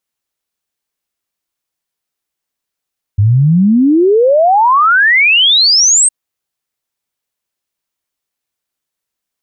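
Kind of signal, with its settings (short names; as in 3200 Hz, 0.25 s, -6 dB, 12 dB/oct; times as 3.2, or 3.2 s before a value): log sweep 97 Hz -> 8600 Hz 2.91 s -5.5 dBFS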